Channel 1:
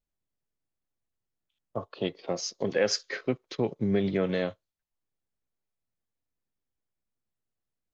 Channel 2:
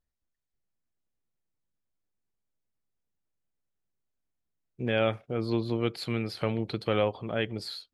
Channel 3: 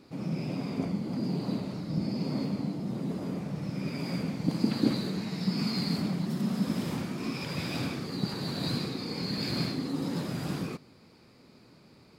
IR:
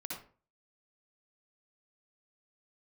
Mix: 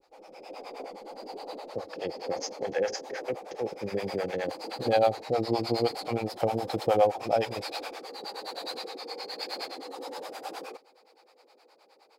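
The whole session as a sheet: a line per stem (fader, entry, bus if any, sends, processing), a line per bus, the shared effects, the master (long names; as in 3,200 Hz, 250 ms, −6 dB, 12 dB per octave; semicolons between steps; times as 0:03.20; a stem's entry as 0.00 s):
−5.5 dB, 0.00 s, no send, compressor on every frequency bin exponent 0.6; octave-band graphic EQ 125/250/500/1,000/4,000 Hz −11/−10/−4/−9/−10 dB
−6.5 dB, 0.00 s, no send, parametric band 710 Hz +12 dB; downward compressor 2.5 to 1, threshold −22 dBFS, peak gain reduction 5 dB
−5.5 dB, 0.00 s, no send, high-pass filter 440 Hz 24 dB per octave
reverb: not used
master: thirty-one-band graphic EQ 315 Hz +4 dB, 500 Hz +9 dB, 800 Hz +12 dB; automatic gain control gain up to 7.5 dB; two-band tremolo in antiphase 9.6 Hz, depth 100%, crossover 520 Hz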